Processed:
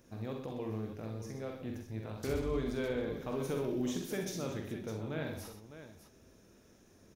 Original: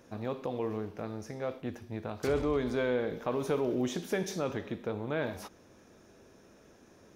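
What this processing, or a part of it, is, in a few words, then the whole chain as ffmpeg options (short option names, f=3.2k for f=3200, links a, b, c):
smiley-face EQ: -af "lowshelf=f=100:g=7,equalizer=f=890:t=o:w=2.3:g=-5,highshelf=f=8.4k:g=7,aecho=1:1:45|65|125|607:0.501|0.422|0.335|0.266,volume=-5dB"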